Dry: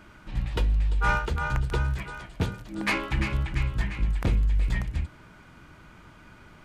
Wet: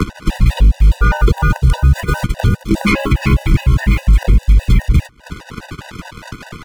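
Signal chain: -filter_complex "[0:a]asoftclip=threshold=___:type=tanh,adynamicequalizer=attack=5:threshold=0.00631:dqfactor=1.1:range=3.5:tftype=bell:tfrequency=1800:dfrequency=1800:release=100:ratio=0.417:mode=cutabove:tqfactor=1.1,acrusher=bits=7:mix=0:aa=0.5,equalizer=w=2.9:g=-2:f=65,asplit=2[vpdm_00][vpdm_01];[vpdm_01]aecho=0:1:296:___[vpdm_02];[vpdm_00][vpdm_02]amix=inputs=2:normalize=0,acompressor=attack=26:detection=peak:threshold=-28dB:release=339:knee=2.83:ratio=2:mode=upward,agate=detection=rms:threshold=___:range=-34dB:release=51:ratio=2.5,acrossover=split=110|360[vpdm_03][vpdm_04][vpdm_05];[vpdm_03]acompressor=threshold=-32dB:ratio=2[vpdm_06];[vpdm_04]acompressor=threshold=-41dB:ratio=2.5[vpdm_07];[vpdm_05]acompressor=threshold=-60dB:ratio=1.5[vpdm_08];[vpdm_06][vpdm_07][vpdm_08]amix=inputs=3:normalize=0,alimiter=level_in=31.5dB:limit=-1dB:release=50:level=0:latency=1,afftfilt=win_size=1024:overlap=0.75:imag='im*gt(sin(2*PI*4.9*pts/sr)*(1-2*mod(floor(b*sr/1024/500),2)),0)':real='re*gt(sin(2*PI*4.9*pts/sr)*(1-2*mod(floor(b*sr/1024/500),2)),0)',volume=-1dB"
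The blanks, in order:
-13dB, 0.0668, -33dB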